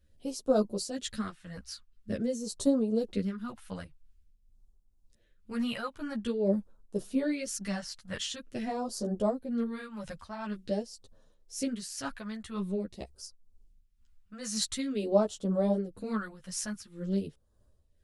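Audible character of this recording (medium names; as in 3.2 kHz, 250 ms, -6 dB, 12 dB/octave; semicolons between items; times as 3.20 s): phasing stages 2, 0.47 Hz, lowest notch 380–2000 Hz; tremolo triangle 2 Hz, depth 65%; a shimmering, thickened sound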